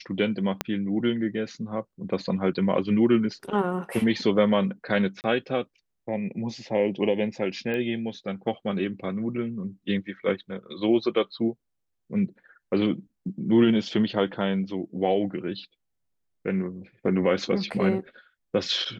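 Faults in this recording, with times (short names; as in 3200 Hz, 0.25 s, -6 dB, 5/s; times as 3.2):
0.61 pop -10 dBFS
5.21–5.24 gap 29 ms
7.74 pop -19 dBFS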